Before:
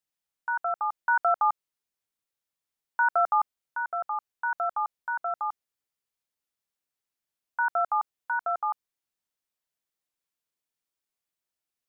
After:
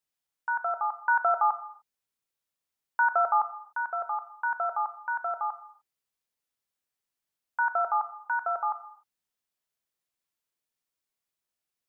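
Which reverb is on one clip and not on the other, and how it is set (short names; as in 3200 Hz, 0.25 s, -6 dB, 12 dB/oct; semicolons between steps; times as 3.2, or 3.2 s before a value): non-linear reverb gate 0.32 s falling, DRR 10 dB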